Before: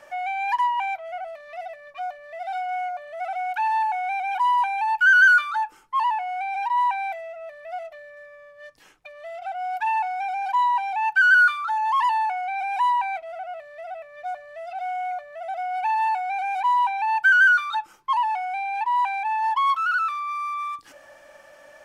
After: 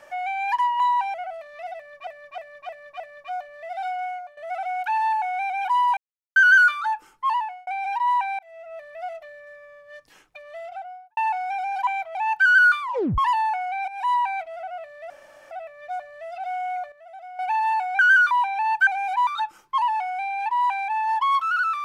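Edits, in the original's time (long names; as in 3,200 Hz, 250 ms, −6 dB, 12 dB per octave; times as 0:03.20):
0:00.80–0:01.08: swap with 0:10.57–0:10.91
0:01.70–0:02.01: repeat, 5 plays
0:02.65–0:03.07: fade out, to −14 dB
0:04.67–0:05.06: silence
0:06.01–0:06.37: fade out
0:07.09–0:07.46: fade in
0:09.26–0:09.87: fade out and dull
0:11.58: tape stop 0.36 s
0:12.64–0:12.91: fade in, from −13.5 dB
0:13.86: splice in room tone 0.41 s
0:15.27–0:15.74: clip gain −11 dB
0:16.34–0:16.74: swap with 0:17.30–0:17.62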